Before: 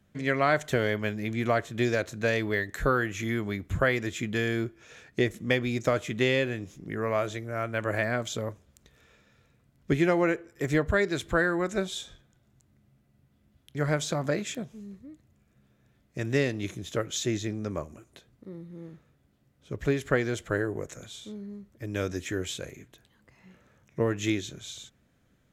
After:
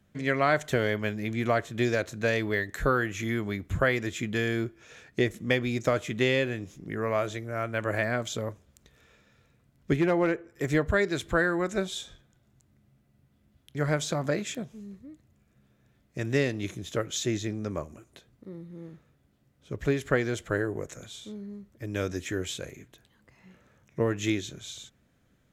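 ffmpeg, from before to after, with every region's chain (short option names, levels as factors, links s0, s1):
-filter_complex "[0:a]asettb=1/sr,asplit=3[s0][s1][s2];[s0]atrim=end=9.964[s3];[s1]atrim=start=9.96:end=10.54,asetpts=PTS-STARTPTS,afade=t=in:d=0.004:c=qsin,afade=t=out:st=0.576:d=0.004:c=qsin,highshelf=f=3400:g=-9.5,asoftclip=type=hard:threshold=0.126[s4];[s2]atrim=start=10.536[s5];[s3][s4]acrossfade=d=0.004:c1=hsin:c2=qsin[s6];[s6][s5]acrossfade=d=0.004:c1=qsin:c2=hsin"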